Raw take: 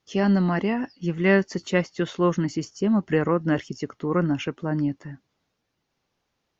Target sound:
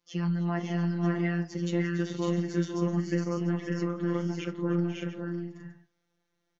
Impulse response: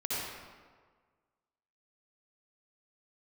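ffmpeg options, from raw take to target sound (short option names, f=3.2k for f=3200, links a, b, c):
-filter_complex "[0:a]acrossover=split=140[a][b];[b]acompressor=threshold=-26dB:ratio=3[c];[a][c]amix=inputs=2:normalize=0,afftfilt=real='hypot(re,im)*cos(PI*b)':imag='0':win_size=1024:overlap=0.75,flanger=delay=9.3:depth=5.4:regen=69:speed=0.85:shape=triangular,asplit=2[d][e];[e]aecho=0:1:308|497|552|592|694:0.133|0.266|0.708|0.531|0.211[f];[d][f]amix=inputs=2:normalize=0,volume=1.5dB"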